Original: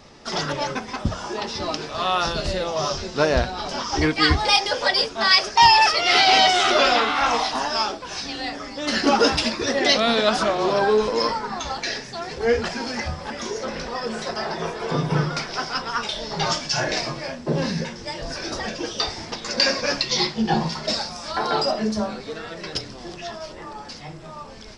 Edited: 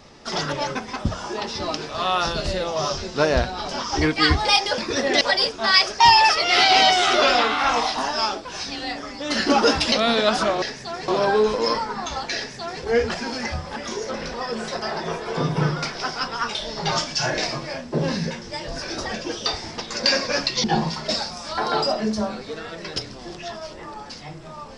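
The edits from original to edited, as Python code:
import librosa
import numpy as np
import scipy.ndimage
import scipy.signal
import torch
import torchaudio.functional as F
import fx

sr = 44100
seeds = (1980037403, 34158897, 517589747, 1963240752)

y = fx.edit(x, sr, fx.move(start_s=9.49, length_s=0.43, to_s=4.78),
    fx.duplicate(start_s=11.9, length_s=0.46, to_s=10.62),
    fx.cut(start_s=20.18, length_s=0.25), tone=tone)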